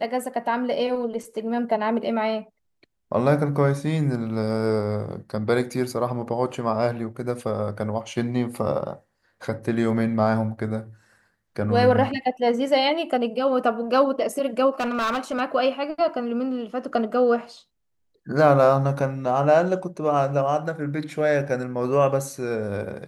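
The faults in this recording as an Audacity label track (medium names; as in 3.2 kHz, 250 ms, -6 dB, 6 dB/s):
14.700000	15.410000	clipped -21 dBFS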